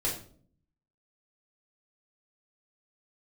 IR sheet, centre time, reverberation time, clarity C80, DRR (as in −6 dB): 29 ms, 0.50 s, 11.0 dB, −5.0 dB